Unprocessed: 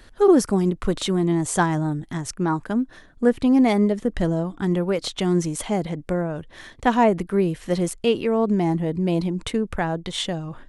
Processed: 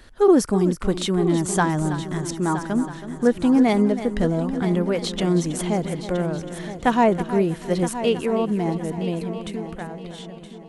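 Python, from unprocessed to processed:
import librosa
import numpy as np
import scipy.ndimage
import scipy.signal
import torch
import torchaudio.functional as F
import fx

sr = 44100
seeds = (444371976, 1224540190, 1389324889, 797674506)

y = fx.fade_out_tail(x, sr, length_s=2.86)
y = fx.echo_heads(y, sr, ms=323, heads='first and third', feedback_pct=47, wet_db=-12.5)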